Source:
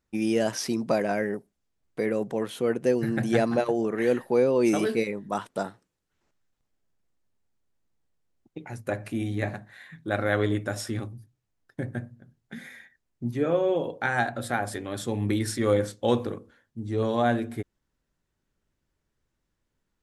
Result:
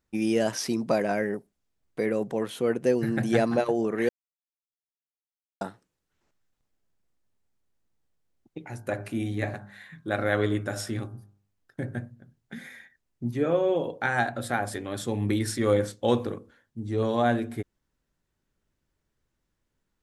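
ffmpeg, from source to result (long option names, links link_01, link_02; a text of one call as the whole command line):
ffmpeg -i in.wav -filter_complex "[0:a]asettb=1/sr,asplit=3[link_01][link_02][link_03];[link_01]atrim=end=8.594[link_04];[link_02]atrim=start=8.59:end=11.99,asetpts=PTS-STARTPTS,afade=type=in:duration=0.004:curve=qsin,afade=type=out:start_time=3.396:duration=0.004:curve=qsin,bandreject=frequency=50.21:width_type=h:width=4,bandreject=frequency=100.42:width_type=h:width=4,bandreject=frequency=150.63:width_type=h:width=4,bandreject=frequency=200.84:width_type=h:width=4,bandreject=frequency=251.05:width_type=h:width=4,bandreject=frequency=301.26:width_type=h:width=4,bandreject=frequency=351.47:width_type=h:width=4,bandreject=frequency=401.68:width_type=h:width=4,bandreject=frequency=451.89:width_type=h:width=4,bandreject=frequency=502.1:width_type=h:width=4,bandreject=frequency=552.31:width_type=h:width=4,bandreject=frequency=602.52:width_type=h:width=4,bandreject=frequency=652.73:width_type=h:width=4,bandreject=frequency=702.94:width_type=h:width=4,bandreject=frequency=753.15:width_type=h:width=4,bandreject=frequency=803.36:width_type=h:width=4,bandreject=frequency=853.57:width_type=h:width=4,bandreject=frequency=903.78:width_type=h:width=4,bandreject=frequency=953.99:width_type=h:width=4,bandreject=frequency=1004.2:width_type=h:width=4,bandreject=frequency=1054.41:width_type=h:width=4,bandreject=frequency=1104.62:width_type=h:width=4,bandreject=frequency=1154.83:width_type=h:width=4,bandreject=frequency=1205.04:width_type=h:width=4,bandreject=frequency=1255.25:width_type=h:width=4,bandreject=frequency=1305.46:width_type=h:width=4,bandreject=frequency=1355.67:width_type=h:width=4,bandreject=frequency=1405.88:width_type=h:width=4,bandreject=frequency=1456.09:width_type=h:width=4,bandreject=frequency=1506.3:width_type=h:width=4,bandreject=frequency=1556.51:width_type=h:width=4,bandreject=frequency=1606.72:width_type=h:width=4[link_05];[link_03]atrim=start=11.986[link_06];[link_04][link_05]acrossfade=duration=0.004:curve1=hsin:curve2=qsin[link_07];[link_07][link_06]acrossfade=duration=0.004:curve1=qsin:curve2=hsin,asplit=3[link_08][link_09][link_10];[link_08]atrim=end=4.09,asetpts=PTS-STARTPTS,afade=type=out:start_time=4.086:duration=0.004:curve=hsin[link_11];[link_09]atrim=start=4.09:end=5.61,asetpts=PTS-STARTPTS,volume=0[link_12];[link_10]atrim=start=5.61,asetpts=PTS-STARTPTS,afade=type=in:duration=0.004:curve=hsin[link_13];[link_11][link_12][link_13]concat=n=3:v=0:a=1" out.wav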